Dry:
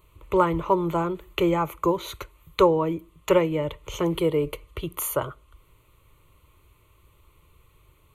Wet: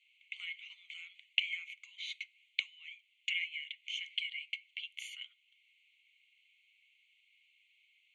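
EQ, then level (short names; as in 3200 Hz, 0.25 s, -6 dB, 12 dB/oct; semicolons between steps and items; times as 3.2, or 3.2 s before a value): rippled Chebyshev high-pass 2100 Hz, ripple 6 dB; tape spacing loss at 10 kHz 44 dB; +16.0 dB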